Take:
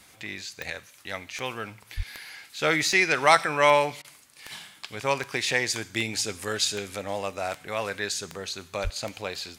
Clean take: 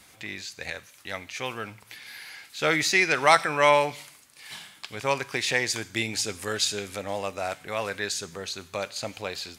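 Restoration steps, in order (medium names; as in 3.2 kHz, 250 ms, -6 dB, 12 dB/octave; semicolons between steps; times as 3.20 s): de-click; 1.96–2.08 s: high-pass 140 Hz 24 dB/octave; 8.83–8.95 s: high-pass 140 Hz 24 dB/octave; interpolate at 4.02 s, 24 ms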